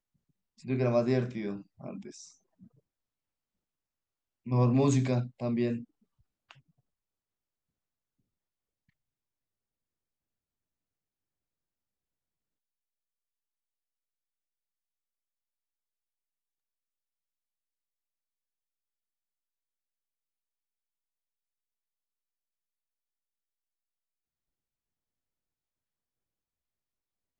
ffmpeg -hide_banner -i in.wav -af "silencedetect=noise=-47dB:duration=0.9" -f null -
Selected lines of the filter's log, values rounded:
silence_start: 2.66
silence_end: 4.46 | silence_duration: 1.80
silence_start: 6.51
silence_end: 27.40 | silence_duration: 20.89